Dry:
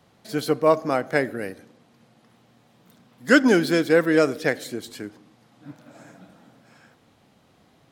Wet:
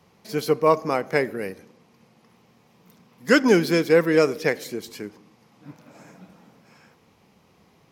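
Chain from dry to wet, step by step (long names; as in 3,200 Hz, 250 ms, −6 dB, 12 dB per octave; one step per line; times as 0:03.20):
EQ curve with evenly spaced ripples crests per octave 0.81, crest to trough 6 dB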